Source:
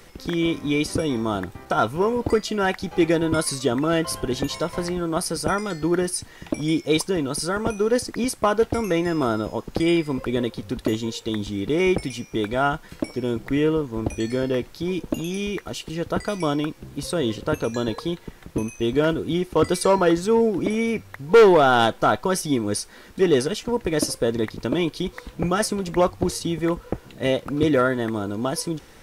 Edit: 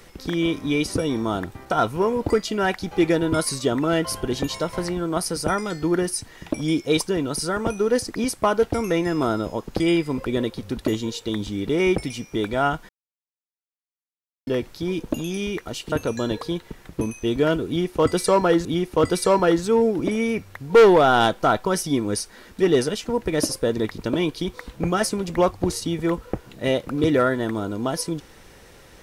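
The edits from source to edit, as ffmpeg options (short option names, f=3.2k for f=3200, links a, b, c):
-filter_complex "[0:a]asplit=5[a][b][c][d][e];[a]atrim=end=12.89,asetpts=PTS-STARTPTS,afade=t=out:st=12.886:d=0.004:c=hsin[f];[b]atrim=start=12.89:end=14.47,asetpts=PTS-STARTPTS,volume=0[g];[c]atrim=start=14.47:end=15.922,asetpts=PTS-STARTPTS,afade=t=in:d=0.004:c=hsin[h];[d]atrim=start=17.488:end=20.222[i];[e]atrim=start=19.238[j];[f][g][h]concat=n=3:v=0:a=1[k];[k][i]acrossfade=d=0.004:c1=hsin:c2=hsin[l];[l][j]acrossfade=d=0.004:c1=hsin:c2=hsin"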